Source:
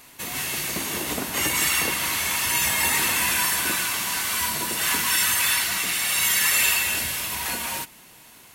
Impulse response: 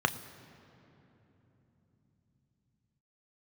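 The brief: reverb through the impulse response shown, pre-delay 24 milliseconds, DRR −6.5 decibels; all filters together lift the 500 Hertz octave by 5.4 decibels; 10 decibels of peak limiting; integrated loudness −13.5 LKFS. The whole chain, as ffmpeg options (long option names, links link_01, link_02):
-filter_complex "[0:a]equalizer=frequency=500:width_type=o:gain=7,alimiter=limit=-17.5dB:level=0:latency=1,asplit=2[link_01][link_02];[1:a]atrim=start_sample=2205,adelay=24[link_03];[link_02][link_03]afir=irnorm=-1:irlink=0,volume=-4dB[link_04];[link_01][link_04]amix=inputs=2:normalize=0,volume=7dB"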